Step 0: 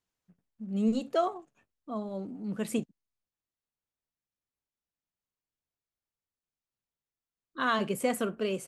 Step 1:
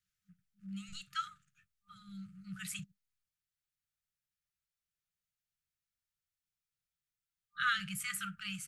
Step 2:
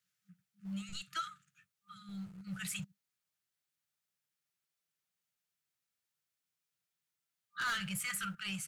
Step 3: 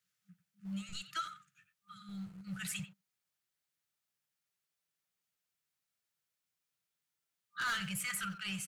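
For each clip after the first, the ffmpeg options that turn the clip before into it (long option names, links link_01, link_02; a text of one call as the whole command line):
ffmpeg -i in.wav -filter_complex "[0:a]afftfilt=real='re*(1-between(b*sr/4096,200,1200))':imag='im*(1-between(b*sr/4096,200,1200))':win_size=4096:overlap=0.75,acrossover=split=160|530|3700[link_01][link_02][link_03][link_04];[link_02]acompressor=threshold=-53dB:ratio=6[link_05];[link_01][link_05][link_03][link_04]amix=inputs=4:normalize=0" out.wav
ffmpeg -i in.wav -filter_complex "[0:a]acrossover=split=110[link_01][link_02];[link_01]acrusher=bits=10:mix=0:aa=0.000001[link_03];[link_02]asoftclip=type=tanh:threshold=-35dB[link_04];[link_03][link_04]amix=inputs=2:normalize=0,volume=3.5dB" out.wav
ffmpeg -i in.wav -filter_complex "[0:a]asplit=2[link_01][link_02];[link_02]adelay=90,highpass=300,lowpass=3400,asoftclip=type=hard:threshold=-39.5dB,volume=-10dB[link_03];[link_01][link_03]amix=inputs=2:normalize=0" out.wav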